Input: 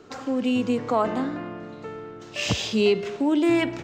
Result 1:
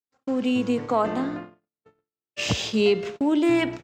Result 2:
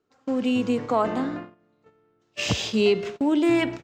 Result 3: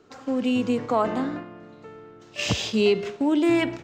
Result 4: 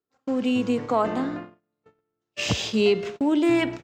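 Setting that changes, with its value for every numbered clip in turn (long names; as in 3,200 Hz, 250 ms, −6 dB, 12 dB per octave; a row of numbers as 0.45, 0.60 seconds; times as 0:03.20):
noise gate, range: −59, −26, −7, −41 decibels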